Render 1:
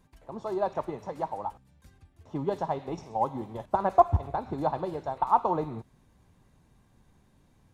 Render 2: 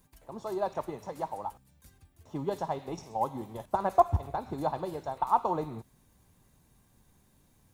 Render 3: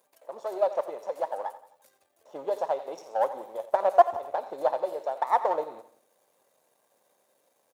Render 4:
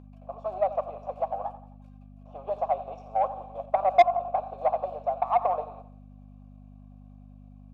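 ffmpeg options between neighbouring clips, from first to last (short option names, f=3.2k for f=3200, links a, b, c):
-af "aemphasis=mode=production:type=50fm,volume=-2.5dB"
-af "aeval=exprs='if(lt(val(0),0),0.447*val(0),val(0))':c=same,highpass=f=550:t=q:w=4.2,aecho=1:1:87|174|261|348:0.178|0.0818|0.0376|0.0173"
-filter_complex "[0:a]asplit=3[a][b][c];[a]bandpass=f=730:t=q:w=8,volume=0dB[d];[b]bandpass=f=1.09k:t=q:w=8,volume=-6dB[e];[c]bandpass=f=2.44k:t=q:w=8,volume=-9dB[f];[d][e][f]amix=inputs=3:normalize=0,aeval=exprs='val(0)+0.00631*(sin(2*PI*50*n/s)+sin(2*PI*2*50*n/s)/2+sin(2*PI*3*50*n/s)/3+sin(2*PI*4*50*n/s)/4+sin(2*PI*5*50*n/s)/5)':c=same,asplit=2[g][h];[h]highpass=f=720:p=1,volume=16dB,asoftclip=type=tanh:threshold=-8dB[i];[g][i]amix=inputs=2:normalize=0,lowpass=f=5.3k:p=1,volume=-6dB"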